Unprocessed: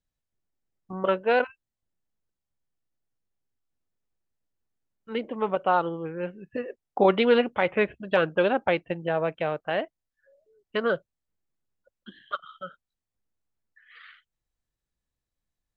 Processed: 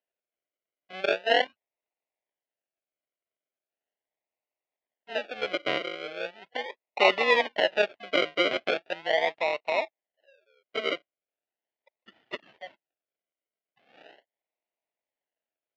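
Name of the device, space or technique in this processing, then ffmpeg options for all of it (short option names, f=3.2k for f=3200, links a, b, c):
circuit-bent sampling toy: -af "acrusher=samples=39:mix=1:aa=0.000001:lfo=1:lforange=23.4:lforate=0.39,highpass=570,equalizer=f=640:t=q:w=4:g=6,equalizer=f=1.2k:t=q:w=4:g=-7,equalizer=f=2k:t=q:w=4:g=6,equalizer=f=2.9k:t=q:w=4:g=7,lowpass=f=4k:w=0.5412,lowpass=f=4k:w=1.3066"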